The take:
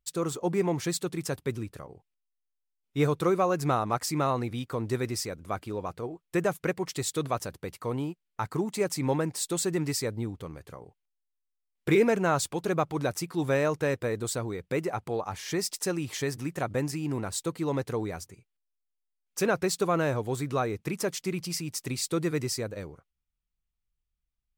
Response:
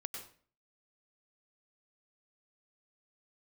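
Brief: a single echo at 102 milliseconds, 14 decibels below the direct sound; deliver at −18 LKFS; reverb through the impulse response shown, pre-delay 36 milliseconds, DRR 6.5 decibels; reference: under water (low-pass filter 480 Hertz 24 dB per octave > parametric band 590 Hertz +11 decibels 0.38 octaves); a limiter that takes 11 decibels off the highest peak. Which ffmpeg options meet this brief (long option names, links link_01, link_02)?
-filter_complex "[0:a]alimiter=limit=-23.5dB:level=0:latency=1,aecho=1:1:102:0.2,asplit=2[link_01][link_02];[1:a]atrim=start_sample=2205,adelay=36[link_03];[link_02][link_03]afir=irnorm=-1:irlink=0,volume=-5dB[link_04];[link_01][link_04]amix=inputs=2:normalize=0,lowpass=frequency=480:width=0.5412,lowpass=frequency=480:width=1.3066,equalizer=frequency=590:width_type=o:width=0.38:gain=11,volume=16dB"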